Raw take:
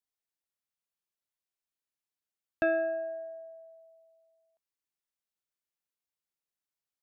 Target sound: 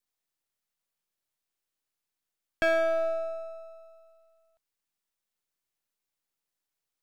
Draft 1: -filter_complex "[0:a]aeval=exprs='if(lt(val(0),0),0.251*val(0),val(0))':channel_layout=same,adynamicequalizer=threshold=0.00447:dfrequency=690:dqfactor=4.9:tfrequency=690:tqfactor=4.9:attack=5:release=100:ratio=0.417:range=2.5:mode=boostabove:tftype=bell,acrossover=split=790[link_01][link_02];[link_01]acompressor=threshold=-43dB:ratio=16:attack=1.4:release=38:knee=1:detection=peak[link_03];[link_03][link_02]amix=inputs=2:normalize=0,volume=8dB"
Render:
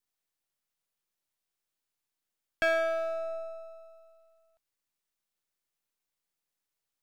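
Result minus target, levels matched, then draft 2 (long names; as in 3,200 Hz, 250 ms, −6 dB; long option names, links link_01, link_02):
downward compressor: peak gain reduction +8 dB
-filter_complex "[0:a]aeval=exprs='if(lt(val(0),0),0.251*val(0),val(0))':channel_layout=same,adynamicequalizer=threshold=0.00447:dfrequency=690:dqfactor=4.9:tfrequency=690:tqfactor=4.9:attack=5:release=100:ratio=0.417:range=2.5:mode=boostabove:tftype=bell,acrossover=split=790[link_01][link_02];[link_01]acompressor=threshold=-34.5dB:ratio=16:attack=1.4:release=38:knee=1:detection=peak[link_03];[link_03][link_02]amix=inputs=2:normalize=0,volume=8dB"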